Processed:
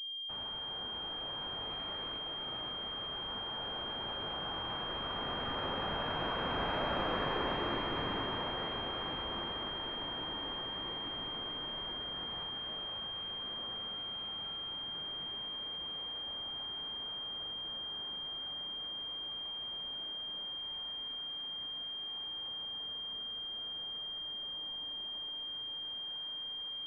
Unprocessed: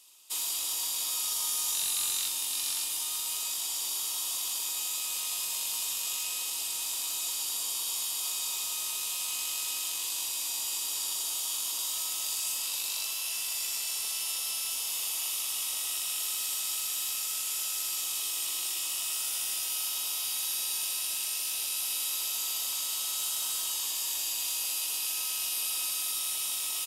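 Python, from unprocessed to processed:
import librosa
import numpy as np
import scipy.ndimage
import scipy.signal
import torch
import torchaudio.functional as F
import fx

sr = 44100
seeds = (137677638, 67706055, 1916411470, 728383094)

y = fx.doppler_pass(x, sr, speed_mps=15, closest_m=12.0, pass_at_s=6.99)
y = fx.pwm(y, sr, carrier_hz=3200.0)
y = y * librosa.db_to_amplitude(5.0)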